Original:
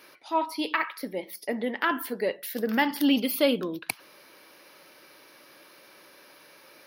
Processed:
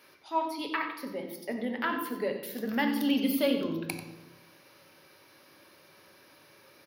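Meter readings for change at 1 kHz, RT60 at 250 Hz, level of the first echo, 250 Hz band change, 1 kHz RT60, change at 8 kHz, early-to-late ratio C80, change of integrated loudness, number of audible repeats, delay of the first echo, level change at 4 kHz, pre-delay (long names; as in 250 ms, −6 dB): −3.5 dB, 1.3 s, −11.5 dB, −2.0 dB, 0.95 s, −5.5 dB, 8.0 dB, −3.5 dB, 1, 91 ms, −5.0 dB, 3 ms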